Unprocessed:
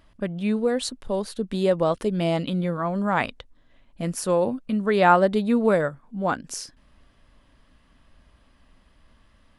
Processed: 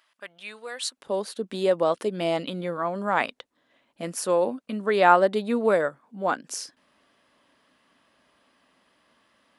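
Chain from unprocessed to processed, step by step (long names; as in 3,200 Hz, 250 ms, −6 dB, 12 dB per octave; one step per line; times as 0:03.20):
high-pass filter 1,200 Hz 12 dB per octave, from 0:00.97 300 Hz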